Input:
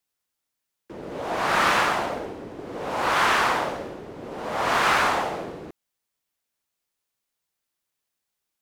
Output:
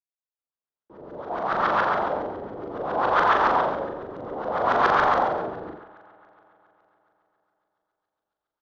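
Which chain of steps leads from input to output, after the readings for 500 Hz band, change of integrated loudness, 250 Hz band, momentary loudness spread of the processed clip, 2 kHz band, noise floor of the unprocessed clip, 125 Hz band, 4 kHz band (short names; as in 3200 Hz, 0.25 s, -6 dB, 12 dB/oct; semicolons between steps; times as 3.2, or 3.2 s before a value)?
+3.0 dB, -0.5 dB, 0.0 dB, 16 LU, -3.5 dB, -83 dBFS, -1.0 dB, -9.5 dB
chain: opening faded in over 2.40 s; spring tank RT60 3.7 s, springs 50 ms, chirp 50 ms, DRR 19.5 dB; LFO low-pass saw up 7.2 Hz 450–1600 Hz; band shelf 4600 Hz +13.5 dB 1.3 oct; on a send: reverse bouncing-ball echo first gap 40 ms, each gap 1.1×, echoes 5; on the sum: gain -3 dB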